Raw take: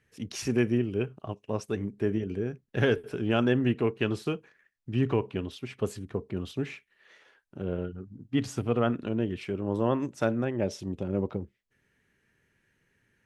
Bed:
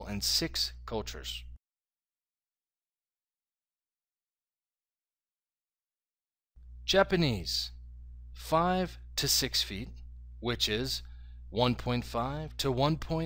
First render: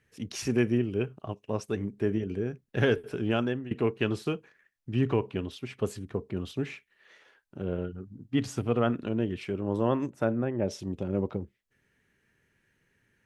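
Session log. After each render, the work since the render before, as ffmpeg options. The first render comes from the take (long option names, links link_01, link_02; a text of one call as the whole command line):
ffmpeg -i in.wav -filter_complex "[0:a]asettb=1/sr,asplit=3[link_01][link_02][link_03];[link_01]atrim=end=10.104[link_04];[link_02]atrim=start=10.1:end=10.68,asetpts=PTS-STARTPTS,afade=type=in:duration=0.004:curve=qsin,afade=type=out:start_time=0.576:duration=0.004:curve=qsin,equalizer=frequency=5400:width=0.57:gain=-12.5[link_05];[link_03]atrim=start=10.676[link_06];[link_04][link_05]acrossfade=duration=0.004:curve1=hsin:curve2=qsin[link_07];[link_07][link_06]acrossfade=duration=0.004:curve1=qsin:curve2=hsin,asplit=2[link_08][link_09];[link_08]atrim=end=3.71,asetpts=PTS-STARTPTS,afade=type=out:start_time=3.26:duration=0.45:silence=0.105925[link_10];[link_09]atrim=start=3.71,asetpts=PTS-STARTPTS,afade=type=in:duration=0.004:curve=hsin:silence=0.105925[link_11];[link_10][link_11]concat=n=2:v=0:a=1" out.wav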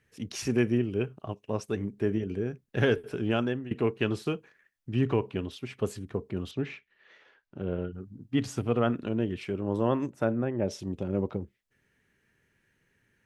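ffmpeg -i in.wav -filter_complex "[0:a]asettb=1/sr,asplit=3[link_01][link_02][link_03];[link_01]atrim=end=6.514[link_04];[link_02]atrim=start=6.51:end=7.93,asetpts=PTS-STARTPTS,afade=type=in:duration=0.004:curve=qsin,afade=type=out:start_time=1.416:duration=0.004:curve=qsin,lowpass=4500[link_05];[link_03]atrim=start=7.926[link_06];[link_04][link_05]acrossfade=duration=0.004:curve1=hsin:curve2=qsin[link_07];[link_07][link_06]acrossfade=duration=0.004:curve1=qsin:curve2=hsin" out.wav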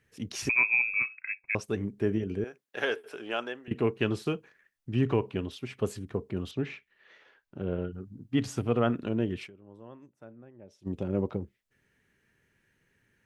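ffmpeg -i in.wav -filter_complex "[0:a]asettb=1/sr,asplit=3[link_01][link_02][link_03];[link_01]atrim=end=0.494[link_04];[link_02]atrim=start=0.49:end=1.55,asetpts=PTS-STARTPTS,afade=type=in:duration=0.004:curve=qsin,afade=type=out:start_time=1.056:duration=0.004:curve=qsin,lowpass=frequency=2300:width_type=q:width=0.5098,lowpass=frequency=2300:width_type=q:width=0.6013,lowpass=frequency=2300:width_type=q:width=0.9,lowpass=frequency=2300:width_type=q:width=2.563,afreqshift=-2700[link_05];[link_03]atrim=start=1.546[link_06];[link_04][link_05]acrossfade=duration=0.004:curve1=hsin:curve2=qsin[link_07];[link_07][link_06]acrossfade=duration=0.004:curve1=qsin:curve2=hsin,asettb=1/sr,asplit=3[link_08][link_09][link_10];[link_08]atrim=end=2.444[link_11];[link_09]atrim=start=2.44:end=3.68,asetpts=PTS-STARTPTS,afade=type=in:duration=0.004:curve=qsin,afade=type=out:start_time=1.236:duration=0.004:curve=qsin,highpass=580[link_12];[link_10]atrim=start=3.676[link_13];[link_11][link_12]acrossfade=duration=0.004:curve1=hsin:curve2=qsin[link_14];[link_14][link_13]acrossfade=duration=0.004:curve1=qsin:curve2=hsin,asplit=3[link_15][link_16][link_17];[link_15]atrim=end=9.6,asetpts=PTS-STARTPTS,afade=type=out:start_time=9.46:duration=0.14:curve=exp:silence=0.0794328[link_18];[link_16]atrim=start=9.6:end=10.73,asetpts=PTS-STARTPTS,volume=-22dB[link_19];[link_17]atrim=start=10.73,asetpts=PTS-STARTPTS,afade=type=in:duration=0.14:curve=exp:silence=0.0794328[link_20];[link_18][link_19][link_20]concat=n=3:v=0:a=1" out.wav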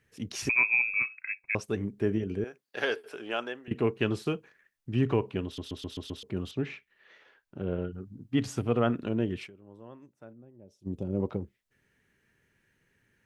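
ffmpeg -i in.wav -filter_complex "[0:a]asettb=1/sr,asplit=3[link_01][link_02][link_03];[link_01]atrim=end=2.644[link_04];[link_02]atrim=start=2.64:end=3.07,asetpts=PTS-STARTPTS,afade=type=in:duration=0.004:curve=qsin,afade=type=out:start_time=0.426:duration=0.004:curve=qsin,equalizer=frequency=4600:width=6.3:gain=13.5[link_05];[link_03]atrim=start=3.066[link_06];[link_04][link_05]acrossfade=duration=0.004:curve1=hsin:curve2=qsin[link_07];[link_07][link_06]acrossfade=duration=0.004:curve1=qsin:curve2=hsin,asettb=1/sr,asplit=3[link_08][link_09][link_10];[link_08]atrim=end=10.334[link_11];[link_09]atrim=start=10.33:end=11.2,asetpts=PTS-STARTPTS,afade=type=in:duration=0.004:curve=qsin,afade=type=out:start_time=0.866:duration=0.004:curve=qsin,equalizer=frequency=1800:width=0.56:gain=-13.5[link_12];[link_10]atrim=start=11.196[link_13];[link_11][link_12]acrossfade=duration=0.004:curve1=hsin:curve2=qsin[link_14];[link_14][link_13]acrossfade=duration=0.004:curve1=qsin:curve2=hsin,asplit=7[link_15][link_16][link_17][link_18][link_19][link_20][link_21];[link_15]atrim=end=5.582[link_22];[link_16]atrim=start=5.448:end=5.582[link_23];[link_17]atrim=start=5.448:end=5.582[link_24];[link_18]atrim=start=5.448:end=5.582[link_25];[link_19]atrim=start=5.448:end=5.582[link_26];[link_20]atrim=start=5.448:end=5.582[link_27];[link_21]atrim=start=6.228[link_28];[link_22][link_23]acrossfade=duration=0.004:curve1=hsin:curve2=hsin[link_29];[link_29][link_24]acrossfade=duration=0.004:curve1=hsin:curve2=hsin[link_30];[link_30][link_25]acrossfade=duration=0.004:curve1=hsin:curve2=hsin[link_31];[link_31][link_26]acrossfade=duration=0.004:curve1=hsin:curve2=hsin[link_32];[link_32][link_27]acrossfade=duration=0.004:curve1=hsin:curve2=hsin[link_33];[link_33][link_28]acrossfade=duration=0.004:curve1=hsin:curve2=hsin" out.wav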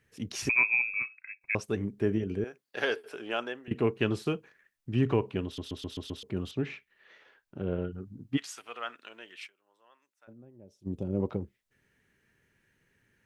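ffmpeg -i in.wav -filter_complex "[0:a]asplit=3[link_01][link_02][link_03];[link_01]afade=type=out:start_time=8.36:duration=0.02[link_04];[link_02]highpass=1400,afade=type=in:start_time=8.36:duration=0.02,afade=type=out:start_time=10.27:duration=0.02[link_05];[link_03]afade=type=in:start_time=10.27:duration=0.02[link_06];[link_04][link_05][link_06]amix=inputs=3:normalize=0,asplit=2[link_07][link_08];[link_07]atrim=end=1.41,asetpts=PTS-STARTPTS,afade=type=out:start_time=0.59:duration=0.82:silence=0.266073[link_09];[link_08]atrim=start=1.41,asetpts=PTS-STARTPTS,afade=type=in:duration=0.004:curve=hsin:silence=0.266073[link_10];[link_09][link_10]concat=n=2:v=0:a=1" out.wav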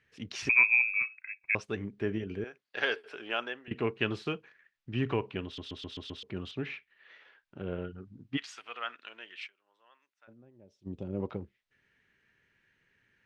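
ffmpeg -i in.wav -af "lowpass=3400,tiltshelf=frequency=1200:gain=-5.5" out.wav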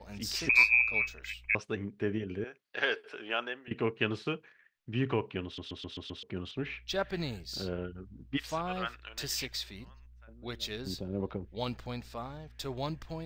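ffmpeg -i in.wav -i bed.wav -filter_complex "[1:a]volume=-8dB[link_01];[0:a][link_01]amix=inputs=2:normalize=0" out.wav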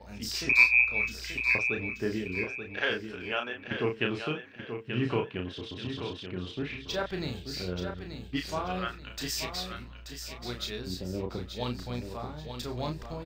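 ffmpeg -i in.wav -filter_complex "[0:a]asplit=2[link_01][link_02];[link_02]adelay=33,volume=-5dB[link_03];[link_01][link_03]amix=inputs=2:normalize=0,aecho=1:1:882|1764|2646|3528:0.398|0.131|0.0434|0.0143" out.wav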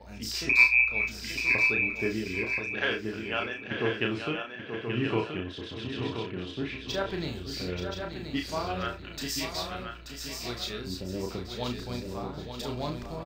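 ffmpeg -i in.wav -filter_complex "[0:a]asplit=2[link_01][link_02];[link_02]adelay=36,volume=-10dB[link_03];[link_01][link_03]amix=inputs=2:normalize=0,asplit=2[link_04][link_05];[link_05]aecho=0:1:1027:0.473[link_06];[link_04][link_06]amix=inputs=2:normalize=0" out.wav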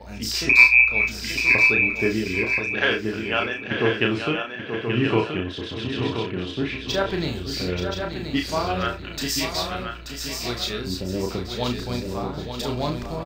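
ffmpeg -i in.wav -af "volume=7.5dB,alimiter=limit=-1dB:level=0:latency=1" out.wav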